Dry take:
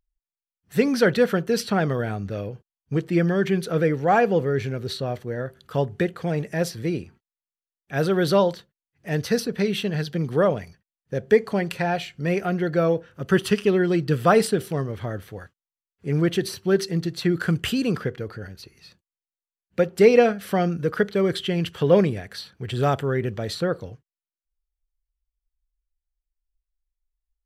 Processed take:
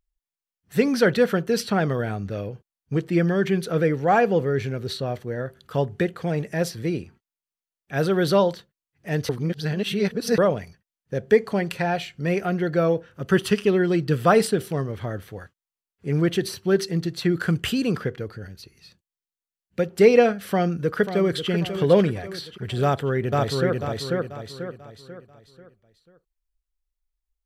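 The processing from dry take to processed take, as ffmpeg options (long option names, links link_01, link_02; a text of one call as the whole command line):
ffmpeg -i in.wav -filter_complex "[0:a]asettb=1/sr,asplit=3[link_01][link_02][link_03];[link_01]atrim=end=18.264[link_04];[link_02]atrim=start=18.26:end=19.9,asetpts=PTS-STARTPTS,afade=type=in:duration=0.004:curve=qsin,afade=type=out:start_time=1.636:duration=0.004:curve=qsin,equalizer=frequency=920:width_type=o:width=2.8:gain=-4.5[link_05];[link_03]atrim=start=19.896[link_06];[link_04][link_05]acrossfade=duration=0.004:curve1=hsin:curve2=qsin[link_07];[link_07][link_06]acrossfade=duration=0.004:curve1=qsin:curve2=hsin,asplit=2[link_08][link_09];[link_09]afade=type=in:start_time=20.49:duration=0.01,afade=type=out:start_time=21.49:duration=0.01,aecho=0:1:540|1080|1620|2160|2700|3240:0.334965|0.167483|0.0837414|0.0418707|0.0209353|0.0104677[link_10];[link_08][link_10]amix=inputs=2:normalize=0,asplit=2[link_11][link_12];[link_12]afade=type=in:start_time=22.83:duration=0.01,afade=type=out:start_time=23.79:duration=0.01,aecho=0:1:490|980|1470|1960|2450:0.841395|0.336558|0.134623|0.0538493|0.0215397[link_13];[link_11][link_13]amix=inputs=2:normalize=0,asplit=3[link_14][link_15][link_16];[link_14]atrim=end=9.292[link_17];[link_15]atrim=start=9.288:end=10.382,asetpts=PTS-STARTPTS,areverse[link_18];[link_16]atrim=start=10.378[link_19];[link_17][link_18]acrossfade=duration=0.004:curve1=hsin:curve2=hsin[link_20];[link_20][link_19]acrossfade=duration=0.004:curve1=hsin:curve2=hsin" out.wav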